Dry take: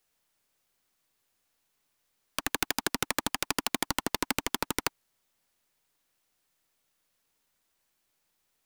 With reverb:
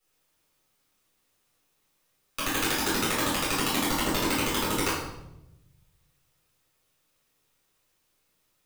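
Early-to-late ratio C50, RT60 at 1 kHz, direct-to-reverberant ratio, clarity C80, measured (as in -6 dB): 1.5 dB, 0.80 s, -9.0 dB, 5.0 dB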